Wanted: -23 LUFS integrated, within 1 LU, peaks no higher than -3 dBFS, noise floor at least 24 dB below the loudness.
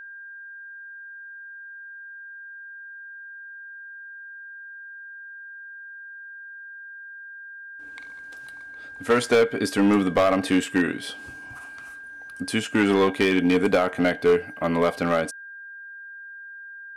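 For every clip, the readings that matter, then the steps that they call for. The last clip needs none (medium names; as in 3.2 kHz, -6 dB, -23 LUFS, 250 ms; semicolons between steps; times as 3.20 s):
clipped samples 0.7%; clipping level -13.0 dBFS; steady tone 1.6 kHz; tone level -38 dBFS; loudness -22.5 LUFS; peak level -13.0 dBFS; loudness target -23.0 LUFS
-> clip repair -13 dBFS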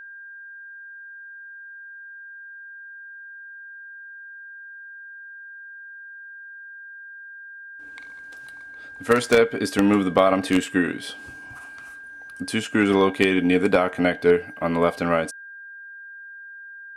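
clipped samples 0.0%; steady tone 1.6 kHz; tone level -38 dBFS
-> band-stop 1.6 kHz, Q 30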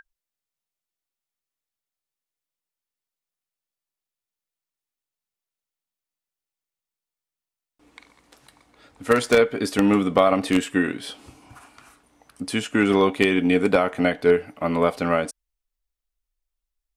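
steady tone not found; loudness -21.0 LUFS; peak level -4.0 dBFS; loudness target -23.0 LUFS
-> trim -2 dB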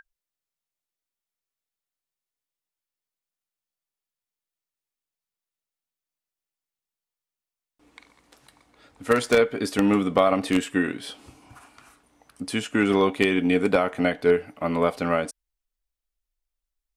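loudness -23.0 LUFS; peak level -6.0 dBFS; noise floor -90 dBFS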